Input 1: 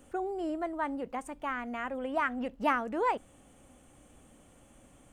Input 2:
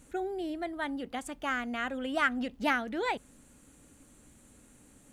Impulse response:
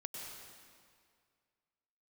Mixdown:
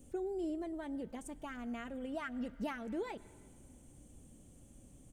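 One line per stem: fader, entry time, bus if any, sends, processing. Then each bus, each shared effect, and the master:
+2.5 dB, 0.00 s, send -17 dB, compressor 3:1, threshold -32 dBFS, peak gain reduction 7.5 dB; EQ curve 130 Hz 0 dB, 390 Hz -6 dB, 1400 Hz -22 dB, 6200 Hz -4 dB
-18.5 dB, 3.7 ms, polarity flipped, send -11 dB, dry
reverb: on, RT60 2.1 s, pre-delay 92 ms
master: dry

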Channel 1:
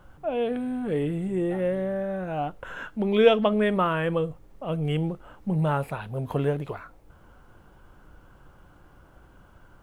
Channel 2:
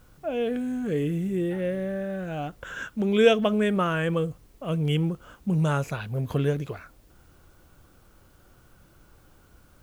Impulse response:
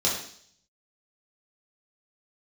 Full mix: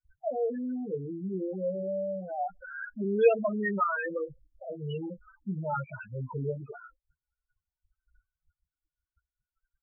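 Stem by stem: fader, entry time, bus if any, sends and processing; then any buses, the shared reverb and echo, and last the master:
-3.0 dB, 0.00 s, no send, gate -47 dBFS, range -33 dB
-2.0 dB, 15 ms, no send, sample gate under -39.5 dBFS; auto duck -7 dB, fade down 1.40 s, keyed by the first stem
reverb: off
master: tilt shelf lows -6 dB, about 680 Hz; loudest bins only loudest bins 4

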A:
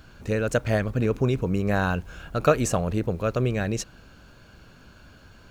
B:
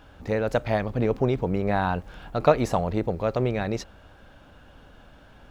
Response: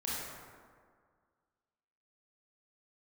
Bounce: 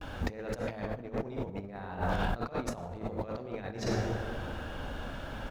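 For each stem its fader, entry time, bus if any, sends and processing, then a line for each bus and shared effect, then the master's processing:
-12.0 dB, 0.00 s, no send, ladder low-pass 400 Hz, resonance 45%
+0.5 dB, 13 ms, send -3 dB, de-hum 55.51 Hz, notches 3; compressor 10:1, threshold -29 dBFS, peak gain reduction 17 dB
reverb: on, RT60 1.9 s, pre-delay 23 ms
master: negative-ratio compressor -34 dBFS, ratio -0.5

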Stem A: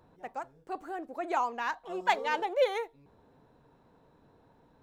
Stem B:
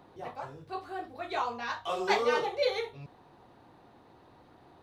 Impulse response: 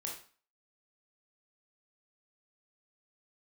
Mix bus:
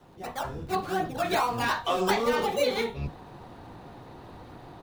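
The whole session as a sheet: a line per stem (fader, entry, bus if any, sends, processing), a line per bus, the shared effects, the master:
-0.5 dB, 0.00 s, send -12 dB, decimation with a swept rate 18×, swing 60% 2.6 Hz
0.0 dB, 11 ms, polarity flipped, no send, octaver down 1 oct, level 0 dB; AGC gain up to 10.5 dB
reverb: on, RT60 0.40 s, pre-delay 19 ms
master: compressor 4:1, threshold -23 dBFS, peak gain reduction 10.5 dB

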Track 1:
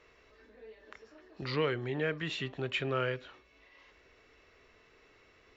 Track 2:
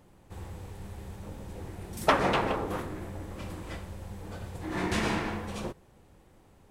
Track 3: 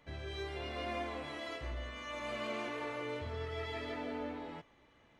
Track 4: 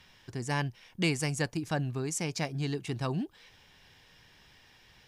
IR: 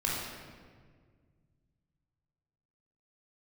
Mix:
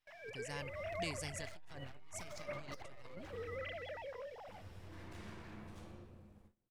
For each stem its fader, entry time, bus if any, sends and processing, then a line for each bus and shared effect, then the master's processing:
-4.0 dB, 0.00 s, bus A, no send, rippled Chebyshev high-pass 200 Hz, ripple 3 dB; comb 6.4 ms, depth 41%
-16.0 dB, 0.20 s, muted 3.56–4.47, bus A, send -4.5 dB, compressor 2.5:1, threshold -42 dBFS, peak gain reduction 16 dB
-5.0 dB, 0.00 s, no bus, no send, sine-wave speech
-16.0 dB, 0.00 s, no bus, no send, high shelf 2300 Hz +8.5 dB
bus A: 0.0 dB, full-wave rectifier; compressor 2.5:1, threshold -41 dBFS, peak gain reduction 8 dB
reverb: on, RT60 1.8 s, pre-delay 19 ms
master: gate with hold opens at -52 dBFS; core saturation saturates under 150 Hz

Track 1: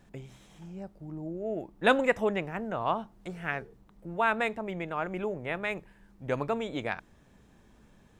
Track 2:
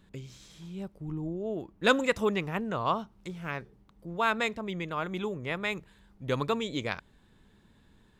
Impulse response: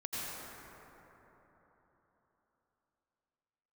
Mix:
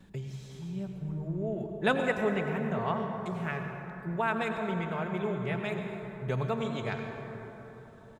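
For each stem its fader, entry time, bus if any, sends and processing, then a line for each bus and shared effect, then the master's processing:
-7.0 dB, 0.00 s, send -5.5 dB, HPF 84 Hz 24 dB/oct
+1.0 dB, 4.6 ms, send -8.5 dB, compressor, threshold -35 dBFS, peak gain reduction 17 dB; auto duck -9 dB, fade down 0.25 s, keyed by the first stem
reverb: on, RT60 4.0 s, pre-delay 78 ms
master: bell 140 Hz +4 dB 2 oct

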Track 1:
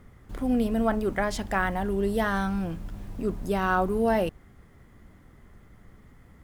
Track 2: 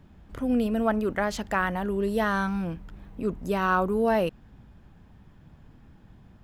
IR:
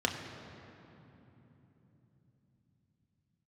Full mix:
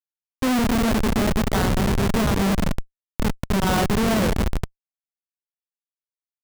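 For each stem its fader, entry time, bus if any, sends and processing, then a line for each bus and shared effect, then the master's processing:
-5.5 dB, 0.00 s, send -21.5 dB, dry
+0.5 dB, 1.5 ms, send -3 dB, dry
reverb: on, RT60 3.5 s, pre-delay 3 ms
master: HPF 63 Hz 6 dB/oct; high shelf 3000 Hz -6 dB; Schmitt trigger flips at -16 dBFS

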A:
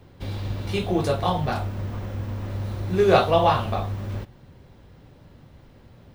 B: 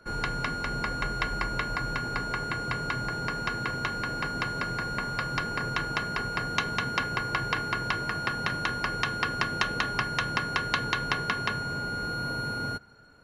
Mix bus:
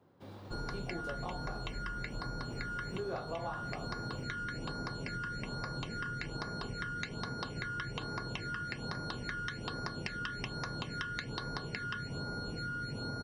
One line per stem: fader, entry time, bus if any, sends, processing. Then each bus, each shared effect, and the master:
-12.5 dB, 0.00 s, no send, HPF 170 Hz 12 dB/oct; resonant high shelf 1700 Hz -6 dB, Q 1.5
-1.0 dB, 0.45 s, no send, elliptic low-pass 9500 Hz, stop band 40 dB; phaser stages 12, 1.2 Hz, lowest notch 720–2900 Hz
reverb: off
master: compressor 6:1, threshold -36 dBFS, peak gain reduction 12.5 dB

